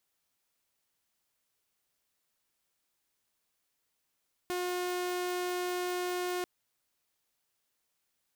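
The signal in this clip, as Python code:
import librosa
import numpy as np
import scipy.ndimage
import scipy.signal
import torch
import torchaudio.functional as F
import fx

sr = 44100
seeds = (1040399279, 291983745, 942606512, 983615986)

y = 10.0 ** (-29.0 / 20.0) * (2.0 * np.mod(359.0 * (np.arange(round(1.94 * sr)) / sr), 1.0) - 1.0)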